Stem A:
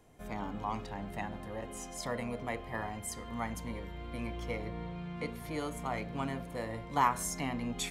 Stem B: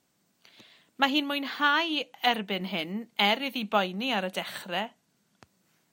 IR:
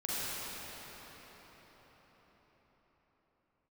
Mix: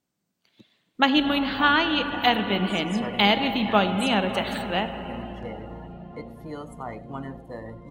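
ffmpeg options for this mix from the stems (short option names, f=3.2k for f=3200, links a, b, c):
-filter_complex "[0:a]bandreject=f=2.3k:w=5.1,adelay=950,volume=0.5dB,asplit=3[a][b][c];[b]volume=-19dB[d];[c]volume=-13.5dB[e];[1:a]lowshelf=f=360:g=6,volume=2dB,asplit=2[f][g];[g]volume=-12.5dB[h];[2:a]atrim=start_sample=2205[i];[d][h]amix=inputs=2:normalize=0[j];[j][i]afir=irnorm=-1:irlink=0[k];[e]aecho=0:1:95:1[l];[a][f][k][l]amix=inputs=4:normalize=0,afftdn=nr=14:nf=-42"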